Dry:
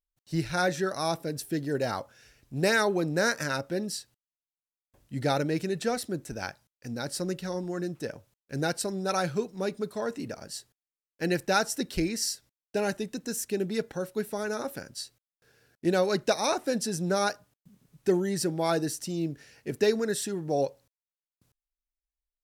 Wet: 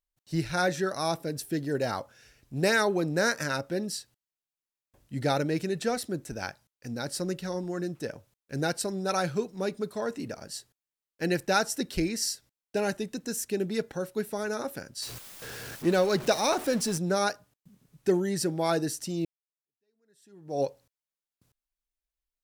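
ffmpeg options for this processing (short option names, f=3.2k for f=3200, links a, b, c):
-filter_complex "[0:a]asettb=1/sr,asplit=3[a][b][c];[a]atrim=end=15.024[d];[b]atrim=start=15.02:end=16.98,asetpts=PTS-STARTPTS,afade=t=in:d=0.004:c=qsin,afade=t=out:st=1.956:d=0.004:c=qsin,aeval=exprs='val(0)+0.5*0.0178*sgn(val(0))':c=same[e];[c]atrim=start=16.976[f];[d][e]acrossfade=d=0.004:c1=hsin:c2=qsin[g];[g][f]acrossfade=d=0.004:c1=qsin:c2=hsin,asplit=2[h][i];[h]atrim=end=19.25,asetpts=PTS-STARTPTS,afade=t=out:st=19.246:d=0.004:c=hsin[j];[i]atrim=start=19.25,asetpts=PTS-STARTPTS,afade=t=in:d=1.37:c=exp[k];[j][k]concat=n=2:v=0:a=1"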